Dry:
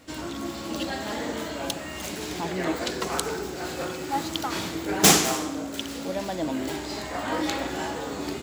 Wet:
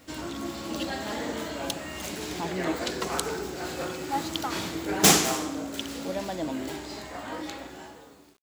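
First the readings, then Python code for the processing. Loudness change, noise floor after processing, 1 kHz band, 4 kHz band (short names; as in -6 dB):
-1.5 dB, -51 dBFS, -2.0 dB, -2.0 dB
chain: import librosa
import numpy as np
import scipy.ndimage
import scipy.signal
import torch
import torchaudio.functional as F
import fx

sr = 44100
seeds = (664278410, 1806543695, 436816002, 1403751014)

y = fx.fade_out_tail(x, sr, length_s=2.32)
y = fx.quant_dither(y, sr, seeds[0], bits=10, dither='none')
y = y * 10.0 ** (-1.5 / 20.0)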